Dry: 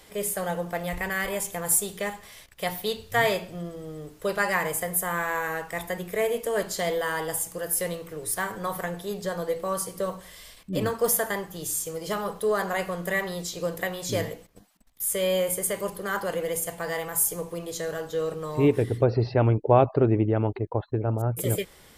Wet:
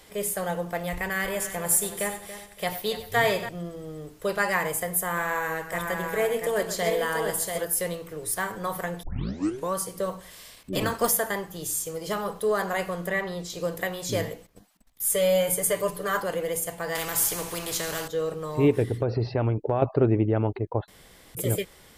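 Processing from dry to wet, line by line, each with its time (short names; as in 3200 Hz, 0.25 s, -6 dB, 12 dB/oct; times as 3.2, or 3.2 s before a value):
1.06–3.49 multi-head echo 94 ms, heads first and third, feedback 41%, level -13 dB
5.03–7.65 tapped delay 0.13/0.687 s -11/-5 dB
9.03 tape start 0.69 s
10.3–11.1 spectral limiter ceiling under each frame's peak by 13 dB
13.07–13.5 LPF 3400 Hz 6 dB/oct
15.04–16.22 comb 6.8 ms, depth 91%
16.95–18.08 spectral compressor 2:1
18.85–19.82 compressor, threshold -20 dBFS
20.88–21.35 room tone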